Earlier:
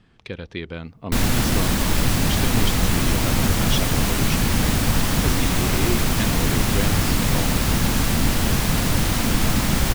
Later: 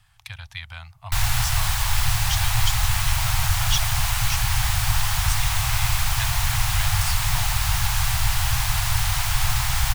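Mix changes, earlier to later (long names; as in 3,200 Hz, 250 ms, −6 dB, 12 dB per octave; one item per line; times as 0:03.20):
speech: remove low-pass filter 4,500 Hz 12 dB per octave
master: add elliptic band-stop filter 120–780 Hz, stop band 40 dB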